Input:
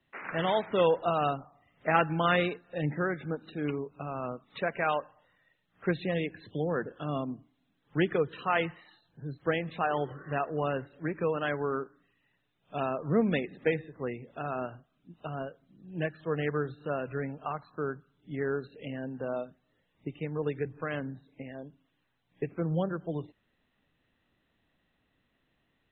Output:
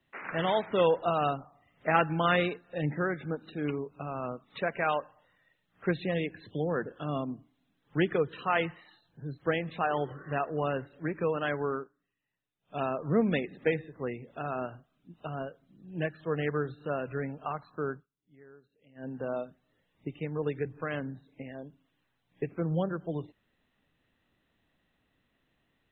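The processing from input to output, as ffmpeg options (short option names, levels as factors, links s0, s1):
-filter_complex "[0:a]asplit=5[s0][s1][s2][s3][s4];[s0]atrim=end=11.93,asetpts=PTS-STARTPTS,afade=t=out:st=11.7:d=0.23:silence=0.211349[s5];[s1]atrim=start=11.93:end=12.58,asetpts=PTS-STARTPTS,volume=0.211[s6];[s2]atrim=start=12.58:end=18.07,asetpts=PTS-STARTPTS,afade=t=in:d=0.23:silence=0.211349,afade=t=out:st=5.36:d=0.13:silence=0.0707946[s7];[s3]atrim=start=18.07:end=18.95,asetpts=PTS-STARTPTS,volume=0.0708[s8];[s4]atrim=start=18.95,asetpts=PTS-STARTPTS,afade=t=in:d=0.13:silence=0.0707946[s9];[s5][s6][s7][s8][s9]concat=n=5:v=0:a=1"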